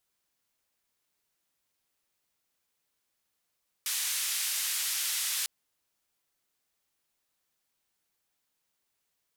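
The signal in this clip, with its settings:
band-limited noise 2,000–13,000 Hz, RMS −31.5 dBFS 1.60 s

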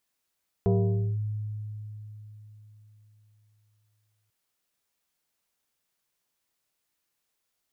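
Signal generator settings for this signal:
two-operator FM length 3.64 s, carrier 106 Hz, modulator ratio 2.73, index 1.3, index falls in 0.52 s linear, decay 3.95 s, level −18.5 dB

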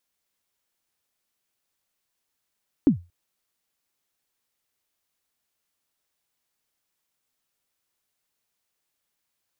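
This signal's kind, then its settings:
synth kick length 0.23 s, from 320 Hz, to 87 Hz, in 108 ms, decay 0.26 s, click off, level −9 dB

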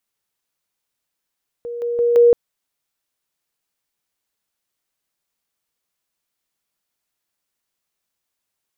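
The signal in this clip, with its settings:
level staircase 475 Hz −25.5 dBFS, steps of 6 dB, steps 4, 0.17 s 0.00 s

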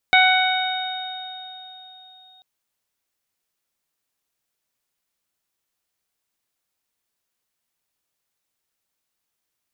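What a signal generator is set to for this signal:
harmonic partials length 2.29 s, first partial 745 Hz, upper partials −1.5/2/−13.5/−3 dB, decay 3.37 s, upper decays 2.50/1.80/2.71/4.36 s, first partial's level −15.5 dB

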